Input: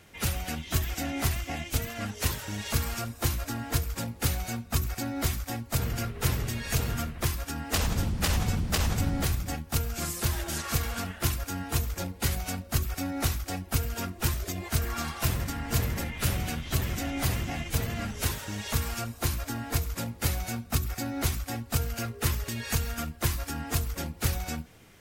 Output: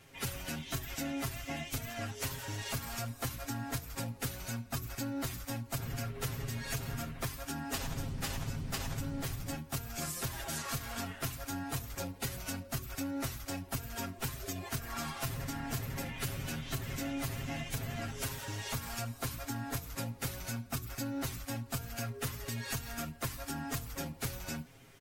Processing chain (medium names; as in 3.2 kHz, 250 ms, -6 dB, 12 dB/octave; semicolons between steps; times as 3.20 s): comb 7.4 ms, depth 89%; compression, threshold -28 dBFS, peak gain reduction 10 dB; trim -5.5 dB